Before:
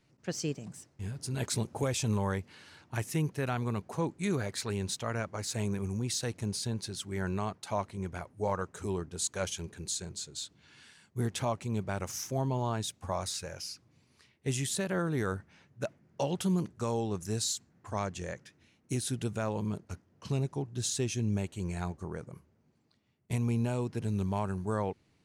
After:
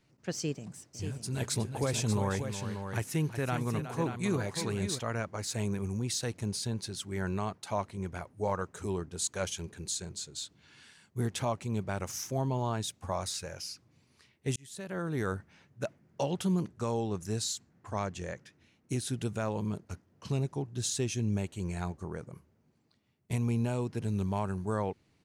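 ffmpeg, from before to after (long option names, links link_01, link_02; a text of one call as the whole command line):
ffmpeg -i in.wav -filter_complex "[0:a]asplit=3[link_01][link_02][link_03];[link_01]afade=type=out:start_time=0.93:duration=0.02[link_04];[link_02]aecho=1:1:367|585:0.299|0.398,afade=type=in:start_time=0.93:duration=0.02,afade=type=out:start_time=4.98:duration=0.02[link_05];[link_03]afade=type=in:start_time=4.98:duration=0.02[link_06];[link_04][link_05][link_06]amix=inputs=3:normalize=0,asettb=1/sr,asplit=3[link_07][link_08][link_09];[link_07]atrim=end=16.264[link_10];[link_08]atrim=start=16.26:end=19.17,asetpts=PTS-STARTPTS,afade=type=in:duration=0.004:curve=qsin,afade=type=out:start_time=2.906:duration=0.004:curve=qsin,highshelf=frequency=6300:gain=-4[link_11];[link_09]atrim=start=19.166[link_12];[link_10][link_11]acrossfade=duration=0.004:curve1=hsin:curve2=qsin[link_13];[link_13][link_12]acrossfade=duration=0.004:curve1=qsin:curve2=hsin,asplit=2[link_14][link_15];[link_14]atrim=end=14.56,asetpts=PTS-STARTPTS,afade=type=out:start_time=14.556:duration=0.004:curve=hsin[link_16];[link_15]atrim=start=14.56,asetpts=PTS-STARTPTS,afade=type=in:duration=0.71[link_17];[link_16][link_17]concat=n=2:v=0:a=1" out.wav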